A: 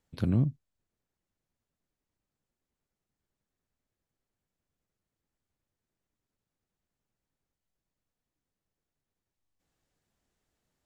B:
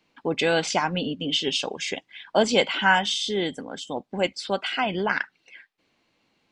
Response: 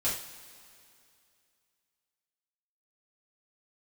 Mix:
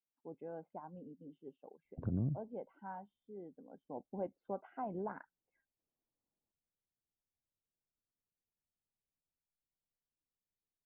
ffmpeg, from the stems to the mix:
-filter_complex "[0:a]alimiter=limit=-23dB:level=0:latency=1:release=163,adelay=1850,volume=0.5dB[a];[1:a]volume=-12.5dB,afade=t=in:st=3.49:d=0.6:silence=0.298538[b];[a][b]amix=inputs=2:normalize=0,afftdn=nr=14:nf=-51,lowpass=f=1k:w=0.5412,lowpass=f=1k:w=1.3066,acompressor=threshold=-39dB:ratio=1.5"

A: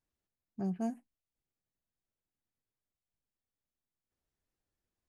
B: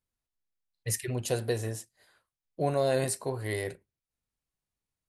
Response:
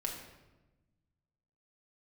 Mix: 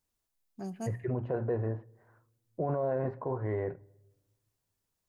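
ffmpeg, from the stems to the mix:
-filter_complex "[0:a]highpass=f=330:p=1,highshelf=f=3.5k:g=10,volume=-0.5dB,asplit=2[a][b];[b]volume=-18.5dB[c];[1:a]lowpass=f=1.4k:w=0.5412,lowpass=f=1.4k:w=1.3066,equalizer=f=950:w=4.8:g=3.5,bandreject=f=60:t=h:w=6,bandreject=f=120:t=h:w=6,volume=2dB,asplit=3[d][e][f];[e]volume=-23.5dB[g];[f]apad=whole_len=224060[h];[a][h]sidechaincompress=threshold=-44dB:ratio=8:attack=16:release=172[i];[2:a]atrim=start_sample=2205[j];[c][g]amix=inputs=2:normalize=0[k];[k][j]afir=irnorm=-1:irlink=0[l];[i][d][l]amix=inputs=3:normalize=0,alimiter=limit=-23dB:level=0:latency=1:release=12"

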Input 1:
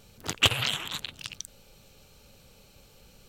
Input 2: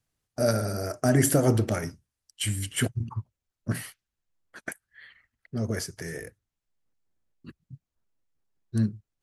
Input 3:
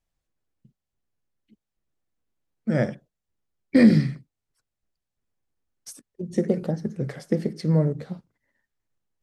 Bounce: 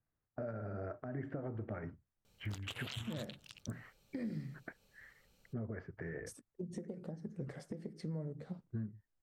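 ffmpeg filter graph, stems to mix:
-filter_complex "[0:a]adelay=2250,volume=-15.5dB[a];[1:a]lowpass=f=1.9k:w=0.5412,lowpass=f=1.9k:w=1.3066,volume=-5.5dB[b];[2:a]highshelf=f=3.1k:g=-9,adelay=400,volume=-7.5dB[c];[b][c]amix=inputs=2:normalize=0,equalizer=f=8.3k:w=1.7:g=5.5,acompressor=threshold=-38dB:ratio=6,volume=0dB[d];[a][d]amix=inputs=2:normalize=0,alimiter=level_in=7dB:limit=-24dB:level=0:latency=1:release=147,volume=-7dB"

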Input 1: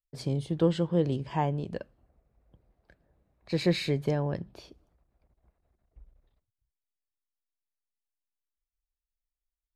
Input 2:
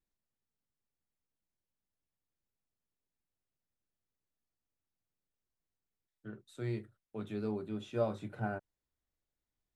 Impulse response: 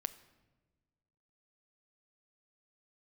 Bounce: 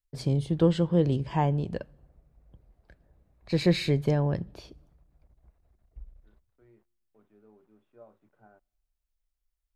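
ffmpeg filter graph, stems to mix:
-filter_complex "[0:a]lowshelf=f=100:g=9,volume=0dB,asplit=2[a][b];[b]volume=-14dB[c];[1:a]highpass=f=370:p=1,acrusher=bits=8:mix=0:aa=0.000001,lowpass=1.4k,volume=-18.5dB,asplit=2[d][e];[e]volume=-18dB[f];[2:a]atrim=start_sample=2205[g];[c][f]amix=inputs=2:normalize=0[h];[h][g]afir=irnorm=-1:irlink=0[i];[a][d][i]amix=inputs=3:normalize=0"

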